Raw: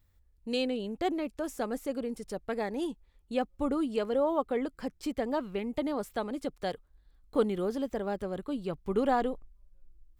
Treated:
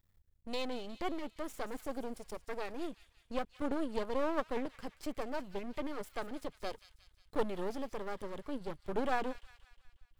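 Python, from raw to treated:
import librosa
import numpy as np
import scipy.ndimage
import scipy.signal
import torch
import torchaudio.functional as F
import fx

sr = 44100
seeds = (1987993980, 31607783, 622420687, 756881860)

p1 = fx.highpass(x, sr, hz=63.0, slope=24, at=(3.56, 4.67))
p2 = np.maximum(p1, 0.0)
p3 = p2 + fx.echo_wet_highpass(p2, sr, ms=180, feedback_pct=54, hz=2400.0, wet_db=-11, dry=0)
y = p3 * 10.0 ** (-1.5 / 20.0)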